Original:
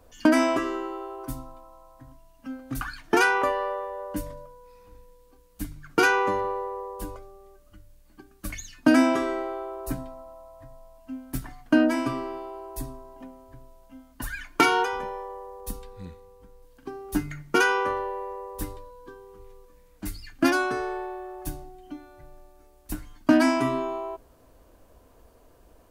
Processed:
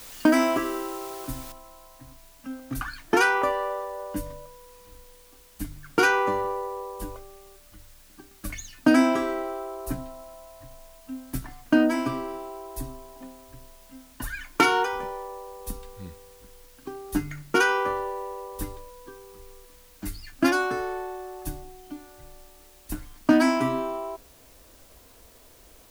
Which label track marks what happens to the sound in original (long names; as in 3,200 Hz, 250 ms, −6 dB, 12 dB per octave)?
1.520000	1.520000	noise floor change −44 dB −56 dB